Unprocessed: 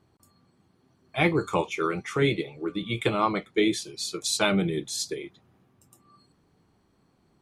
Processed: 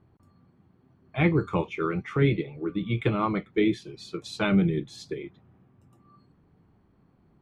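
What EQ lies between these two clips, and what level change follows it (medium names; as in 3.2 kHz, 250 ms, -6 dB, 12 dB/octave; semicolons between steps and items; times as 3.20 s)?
tone controls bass +6 dB, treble -14 dB; treble shelf 4.8 kHz -8 dB; dynamic bell 740 Hz, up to -5 dB, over -39 dBFS, Q 1.1; 0.0 dB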